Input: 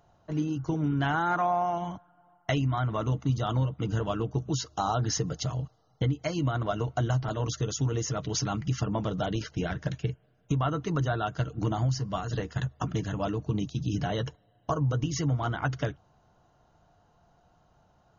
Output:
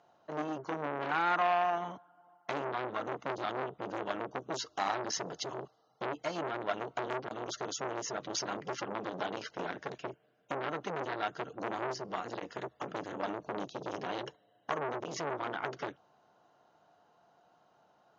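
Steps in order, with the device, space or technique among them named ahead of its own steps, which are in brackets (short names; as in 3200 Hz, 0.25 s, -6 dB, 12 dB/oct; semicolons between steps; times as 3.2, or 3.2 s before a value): public-address speaker with an overloaded transformer (core saturation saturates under 1400 Hz; BPF 300–5400 Hz)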